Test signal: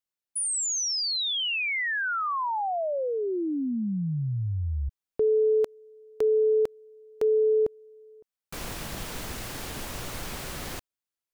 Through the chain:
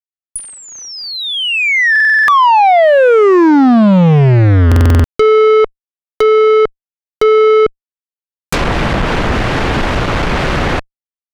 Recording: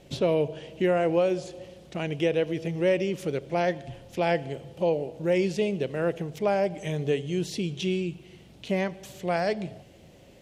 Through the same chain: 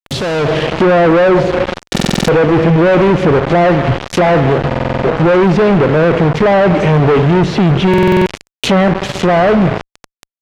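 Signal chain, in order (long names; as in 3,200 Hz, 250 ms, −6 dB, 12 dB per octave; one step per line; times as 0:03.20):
fuzz pedal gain 52 dB, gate −42 dBFS
automatic gain control gain up to 13 dB
treble cut that deepens with the level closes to 1,900 Hz, closed at −5 dBFS
buffer that repeats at 0:01.91/0:04.67/0:07.89, samples 2,048, times 7
level −3 dB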